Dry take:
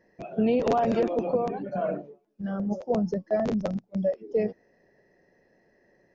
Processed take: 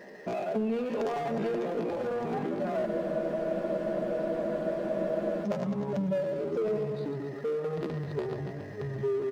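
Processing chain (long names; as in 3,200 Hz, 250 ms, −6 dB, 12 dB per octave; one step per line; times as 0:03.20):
repeating echo 63 ms, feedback 41%, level −8 dB
power curve on the samples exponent 0.7
delay with pitch and tempo change per echo 248 ms, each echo −6 semitones, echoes 2, each echo −6 dB
high-pass filter 710 Hz 6 dB per octave
tilt shelving filter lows +4.5 dB, about 920 Hz
tempo change 0.66×
soft clipping −18 dBFS, distortion −19 dB
downward compressor 5 to 1, threshold −34 dBFS, peak gain reduction 11 dB
comb filter 4.9 ms, depth 36%
frozen spectrum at 0:02.88, 2.56 s
level +4.5 dB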